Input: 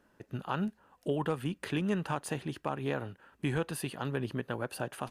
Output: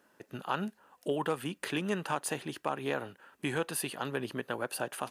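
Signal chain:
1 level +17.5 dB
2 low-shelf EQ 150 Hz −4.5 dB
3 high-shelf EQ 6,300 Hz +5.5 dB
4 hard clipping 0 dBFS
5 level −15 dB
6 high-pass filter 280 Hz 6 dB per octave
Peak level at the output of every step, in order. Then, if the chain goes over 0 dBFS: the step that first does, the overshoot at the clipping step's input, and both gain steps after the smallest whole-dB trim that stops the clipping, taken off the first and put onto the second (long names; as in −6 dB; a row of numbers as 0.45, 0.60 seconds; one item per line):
−2.0, −2.0, −1.5, −1.5, −16.5, −16.5 dBFS
no step passes full scale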